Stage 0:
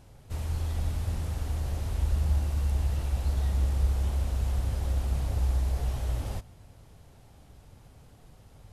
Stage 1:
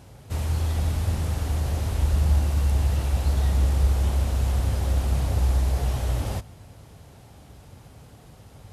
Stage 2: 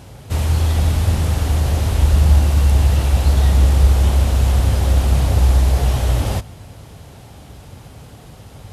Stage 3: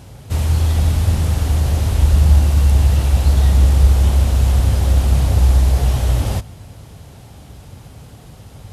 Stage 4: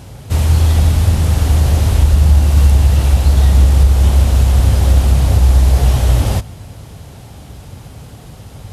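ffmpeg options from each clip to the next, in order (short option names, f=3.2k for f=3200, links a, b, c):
-af "highpass=61,volume=7.5dB"
-af "equalizer=f=3.2k:t=o:w=0.77:g=2,volume=8.5dB"
-af "bass=f=250:g=3,treble=f=4k:g=2,volume=-2dB"
-af "alimiter=limit=-6dB:level=0:latency=1:release=331,volume=4.5dB"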